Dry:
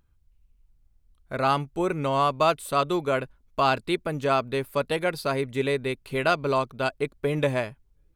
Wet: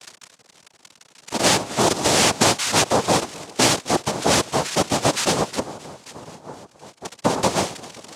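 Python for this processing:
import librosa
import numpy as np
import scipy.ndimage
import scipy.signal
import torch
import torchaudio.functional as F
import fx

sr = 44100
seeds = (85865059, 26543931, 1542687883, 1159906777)

p1 = x + 0.5 * 10.0 ** (-20.0 / 20.0) * np.diff(np.sign(x), prepend=np.sign(x[:1]))
p2 = fx.cheby2_bandstop(p1, sr, low_hz=500.0, high_hz=6000.0, order=4, stop_db=40, at=(5.59, 7.05))
p3 = 10.0 ** (-16.0 / 20.0) * (np.abs((p2 / 10.0 ** (-16.0 / 20.0) + 3.0) % 4.0 - 2.0) - 1.0)
p4 = scipy.signal.sosfilt(scipy.signal.butter(16, 280.0, 'highpass', fs=sr, output='sos'), p3)
p5 = p4 + fx.echo_feedback(p4, sr, ms=263, feedback_pct=53, wet_db=-19, dry=0)
p6 = fx.noise_vocoder(p5, sr, seeds[0], bands=2)
p7 = fx.band_squash(p6, sr, depth_pct=70, at=(1.46, 2.58))
y = p7 * librosa.db_to_amplitude(6.0)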